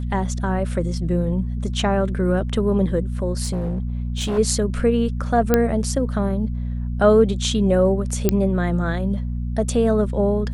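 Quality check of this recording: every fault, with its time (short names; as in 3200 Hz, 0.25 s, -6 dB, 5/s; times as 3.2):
hum 60 Hz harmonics 4 -25 dBFS
3.45–4.39 clipped -19.5 dBFS
5.54 pop -3 dBFS
8.29 pop -3 dBFS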